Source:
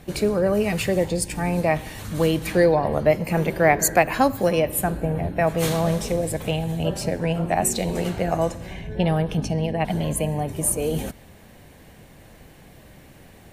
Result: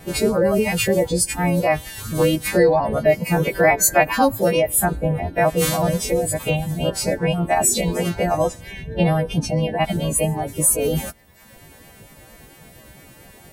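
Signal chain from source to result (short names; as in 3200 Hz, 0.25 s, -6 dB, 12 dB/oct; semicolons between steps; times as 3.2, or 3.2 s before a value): frequency quantiser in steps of 2 st; high shelf 2200 Hz -8.5 dB; in parallel at +2 dB: limiter -14.5 dBFS, peak gain reduction 9.5 dB; on the sum: vibrato 4.4 Hz 29 cents; reverb removal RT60 0.97 s; gain -1 dB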